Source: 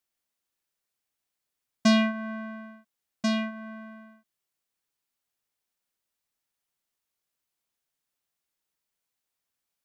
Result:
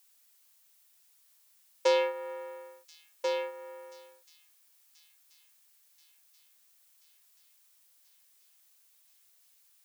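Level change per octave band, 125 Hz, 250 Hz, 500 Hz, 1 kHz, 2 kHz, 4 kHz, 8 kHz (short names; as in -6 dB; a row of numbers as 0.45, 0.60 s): n/a, under -20 dB, +5.5 dB, -1.0 dB, -7.0 dB, -6.5 dB, -5.5 dB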